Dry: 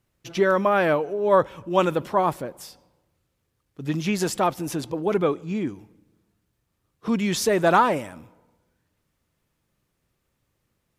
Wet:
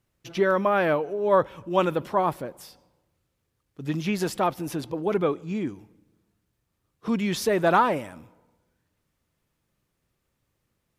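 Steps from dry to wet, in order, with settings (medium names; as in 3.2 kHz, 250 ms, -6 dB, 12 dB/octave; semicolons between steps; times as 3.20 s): dynamic bell 7.3 kHz, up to -6 dB, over -49 dBFS, Q 1.4; trim -2 dB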